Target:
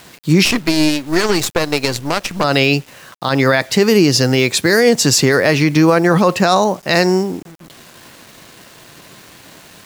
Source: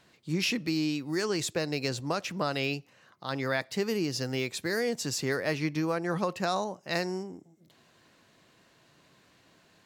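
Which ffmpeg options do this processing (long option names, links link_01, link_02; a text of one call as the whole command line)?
ffmpeg -i in.wav -filter_complex "[0:a]asettb=1/sr,asplit=3[link_01][link_02][link_03];[link_01]atrim=end=0.454[link_04];[link_02]atrim=start=0.45:end=2.44,asetpts=PTS-STARTPTS,afade=type=in:duration=0.004:curve=qsin,afade=type=out:start_time=1.986:duration=0.004:curve=qsin,aeval=exprs='0.158*(cos(1*acos(clip(val(0)/0.158,-1,1)))-cos(1*PI/2))+0.0141*(cos(3*acos(clip(val(0)/0.158,-1,1)))-cos(3*PI/2))+0.0251*(cos(4*acos(clip(val(0)/0.158,-1,1)))-cos(4*PI/2))+0.01*(cos(7*acos(clip(val(0)/0.158,-1,1)))-cos(7*PI/2))':channel_layout=same[link_05];[link_03]atrim=start=2.436[link_06];[link_04][link_05]acrossfade=duration=0.004:curve1=hsin:curve2=qsin[link_07];[link_07][link_06]acrossfade=duration=0.004:curve1=qsin:curve2=hsin,acrusher=bits=9:mix=0:aa=0.000001,alimiter=level_in=21dB:limit=-1dB:release=50:level=0:latency=1,volume=-1dB" out.wav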